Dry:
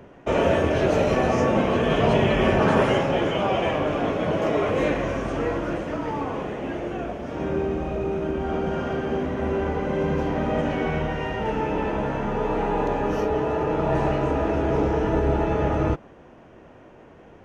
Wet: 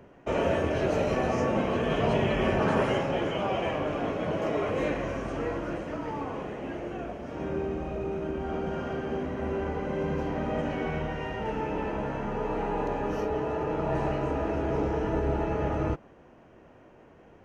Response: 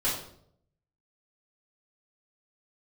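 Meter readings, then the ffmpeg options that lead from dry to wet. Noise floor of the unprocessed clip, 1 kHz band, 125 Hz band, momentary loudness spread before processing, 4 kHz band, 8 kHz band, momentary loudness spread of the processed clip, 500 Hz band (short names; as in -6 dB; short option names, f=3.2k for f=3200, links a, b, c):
-48 dBFS, -6.0 dB, -6.0 dB, 8 LU, -6.5 dB, n/a, 8 LU, -6.0 dB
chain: -af "bandreject=f=3.5k:w=15,volume=-6dB"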